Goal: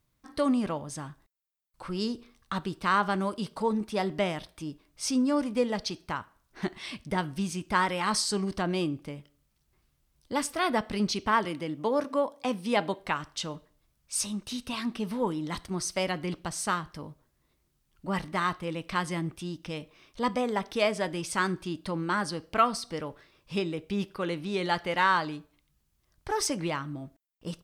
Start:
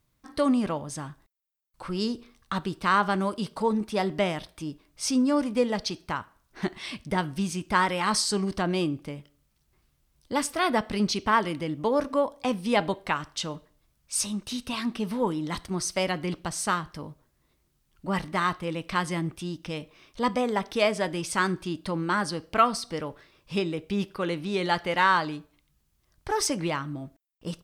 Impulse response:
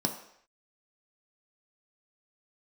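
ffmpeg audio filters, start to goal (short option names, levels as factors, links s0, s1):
-filter_complex "[0:a]asettb=1/sr,asplit=3[s0][s1][s2];[s0]atrim=end=11.454[s3];[s1]atrim=start=11.45:end=12.99,asetpts=PTS-STARTPTS,afade=t=in:d=0.004:c=qsin,afade=t=out:st=1.536:d=0.004:c=qsin,highpass=150[s4];[s2]atrim=start=12.986[s5];[s3][s4]acrossfade=d=0.004:c1=hsin:c2=qsin[s6];[s6][s5]acrossfade=d=0.004:c1=qsin:c2=hsin,volume=0.75"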